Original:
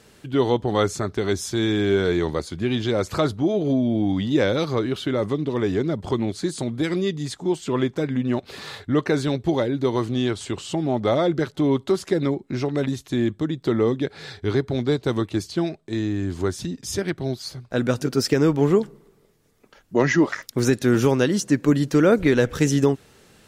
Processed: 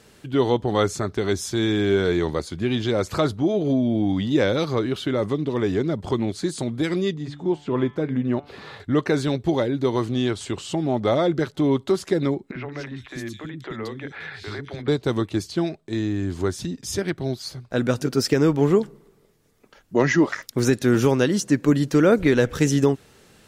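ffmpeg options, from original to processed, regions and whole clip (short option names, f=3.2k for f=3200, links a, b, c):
-filter_complex "[0:a]asettb=1/sr,asplit=3[a][b][c];[a]atrim=end=7.144[d];[b]atrim=start=7.14:end=8.8,asetpts=PTS-STARTPTS,afade=t=in:d=0.004:c=qsin,afade=t=out:st=1.656:d=0.004:c=qsin,bandreject=f=145:t=h:w=4,bandreject=f=290:t=h:w=4,bandreject=f=435:t=h:w=4,bandreject=f=580:t=h:w=4,bandreject=f=725:t=h:w=4,bandreject=f=870:t=h:w=4,bandreject=f=1.015k:t=h:w=4,bandreject=f=1.16k:t=h:w=4,bandreject=f=1.305k:t=h:w=4,bandreject=f=1.45k:t=h:w=4,bandreject=f=1.595k:t=h:w=4,bandreject=f=1.74k:t=h:w=4,bandreject=f=1.885k:t=h:w=4,bandreject=f=2.03k:t=h:w=4,bandreject=f=2.175k:t=h:w=4,bandreject=f=2.32k:t=h:w=4,bandreject=f=2.465k:t=h:w=4,bandreject=f=2.61k:t=h:w=4,bandreject=f=2.755k:t=h:w=4,bandreject=f=2.9k:t=h:w=4,bandreject=f=3.045k:t=h:w=4,bandreject=f=3.19k:t=h:w=4,bandreject=f=3.335k:t=h:w=4,bandreject=f=3.48k:t=h:w=4,bandreject=f=3.625k:t=h:w=4,acrossover=split=4800[e][f];[f]acompressor=threshold=-51dB:ratio=4:attack=1:release=60[g];[e][g]amix=inputs=2:normalize=0,highshelf=f=3.1k:g=-11[h];[c]atrim=start=8.796[i];[d][h]acrossfade=d=0.004:c1=hsin:c2=qsin[j];[j][i]acrossfade=d=0.004:c1=qsin:c2=hsin,asettb=1/sr,asplit=3[k][l][m];[k]atrim=end=12.514[n];[l]atrim=start=12.51:end=14.88,asetpts=PTS-STARTPTS,afade=t=in:d=0.004:c=qsin,afade=t=out:st=2.366:d=0.004:c=qsin,equalizer=f=1.9k:w=0.83:g=11,acompressor=threshold=-30dB:ratio=3:attack=3.2:release=140:knee=1:detection=peak,acrossover=split=320|3100[o][p][q];[o]adelay=40[r];[q]adelay=210[s];[r][p][s]amix=inputs=3:normalize=0,atrim=end_sample=104517[t];[m]atrim=start=14.876[u];[n][t]acrossfade=d=0.004:c1=hsin:c2=qsin[v];[v][u]acrossfade=d=0.004:c1=qsin:c2=hsin"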